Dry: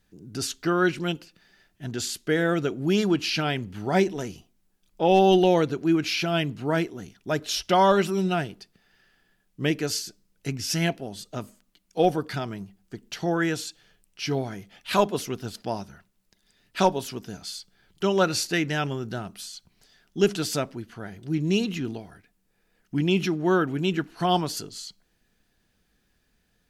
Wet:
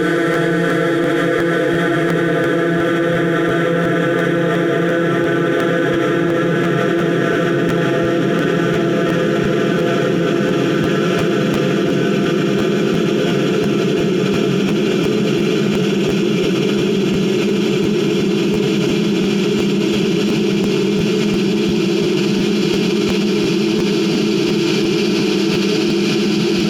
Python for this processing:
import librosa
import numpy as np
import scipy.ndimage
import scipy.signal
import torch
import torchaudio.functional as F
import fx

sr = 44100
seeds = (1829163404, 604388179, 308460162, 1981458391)

p1 = fx.paulstretch(x, sr, seeds[0], factor=41.0, window_s=1.0, from_s=2.46)
p2 = np.clip(10.0 ** (19.0 / 20.0) * p1, -1.0, 1.0) / 10.0 ** (19.0 / 20.0)
p3 = p1 + (p2 * 10.0 ** (-4.5 / 20.0))
p4 = fx.buffer_crackle(p3, sr, first_s=0.33, period_s=0.35, block=512, kind='repeat')
y = fx.env_flatten(p4, sr, amount_pct=100)